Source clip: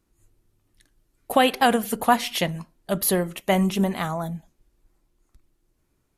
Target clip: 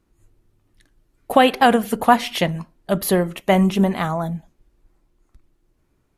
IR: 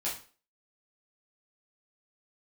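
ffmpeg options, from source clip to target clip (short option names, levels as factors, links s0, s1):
-af "highshelf=f=4100:g=-8.5,volume=1.78"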